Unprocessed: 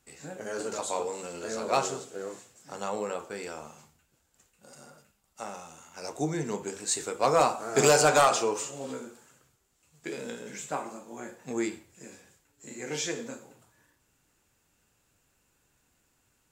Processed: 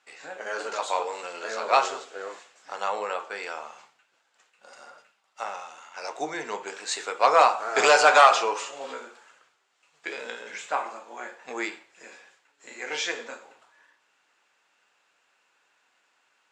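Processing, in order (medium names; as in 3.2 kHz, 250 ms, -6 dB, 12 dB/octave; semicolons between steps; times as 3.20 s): band-pass 780–3600 Hz; trim +9 dB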